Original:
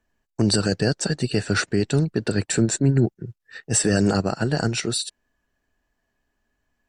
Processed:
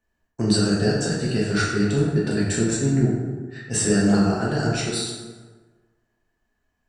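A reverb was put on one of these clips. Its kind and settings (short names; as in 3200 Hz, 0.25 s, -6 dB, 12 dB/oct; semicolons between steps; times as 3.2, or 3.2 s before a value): plate-style reverb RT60 1.4 s, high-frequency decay 0.55×, DRR -5.5 dB; gain -6.5 dB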